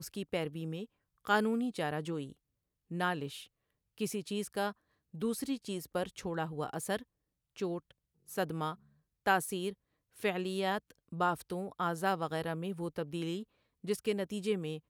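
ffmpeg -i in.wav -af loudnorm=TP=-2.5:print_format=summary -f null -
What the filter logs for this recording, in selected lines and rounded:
Input Integrated:    -36.2 LUFS
Input True Peak:     -15.4 dBTP
Input LRA:             3.5 LU
Input Threshold:     -46.7 LUFS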